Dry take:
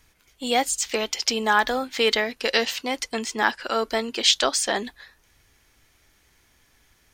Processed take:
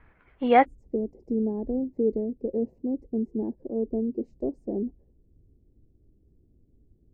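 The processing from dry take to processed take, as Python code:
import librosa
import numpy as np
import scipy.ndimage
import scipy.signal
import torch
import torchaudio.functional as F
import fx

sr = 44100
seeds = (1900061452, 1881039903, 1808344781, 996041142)

y = fx.cheby2_lowpass(x, sr, hz=fx.steps((0.0, 6200.0), (0.64, 1300.0)), order=4, stop_db=60)
y = y * 10.0 ** (5.0 / 20.0)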